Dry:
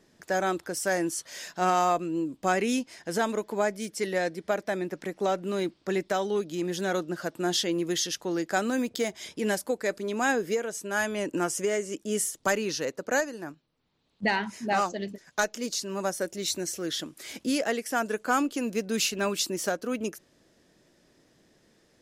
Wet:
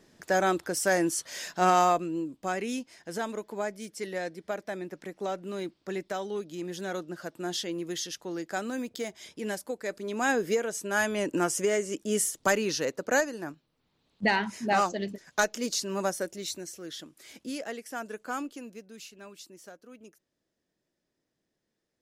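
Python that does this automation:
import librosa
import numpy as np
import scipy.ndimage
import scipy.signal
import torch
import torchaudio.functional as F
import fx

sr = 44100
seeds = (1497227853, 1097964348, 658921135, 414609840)

y = fx.gain(x, sr, db=fx.line((1.81, 2.0), (2.43, -6.0), (9.82, -6.0), (10.46, 1.0), (16.02, 1.0), (16.71, -9.0), (18.46, -9.0), (18.95, -19.5)))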